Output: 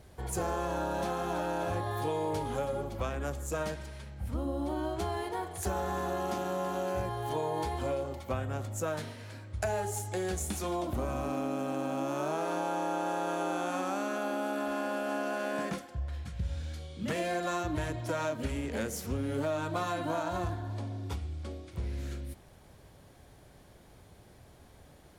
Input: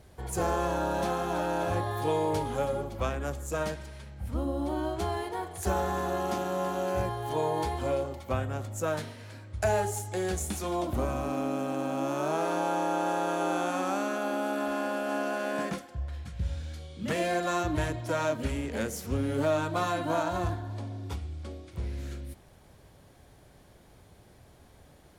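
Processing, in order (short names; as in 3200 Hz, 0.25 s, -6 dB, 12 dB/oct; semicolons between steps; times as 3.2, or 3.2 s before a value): compressor 3:1, threshold -30 dBFS, peak gain reduction 6.5 dB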